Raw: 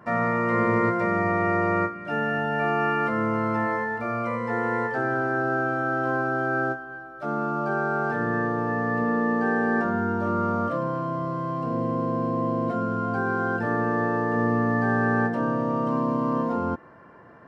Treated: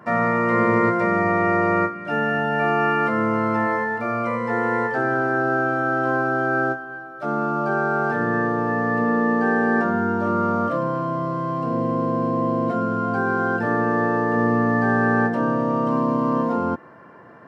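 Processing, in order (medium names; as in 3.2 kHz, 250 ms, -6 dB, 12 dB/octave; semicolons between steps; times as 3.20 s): high-pass 110 Hz; trim +4 dB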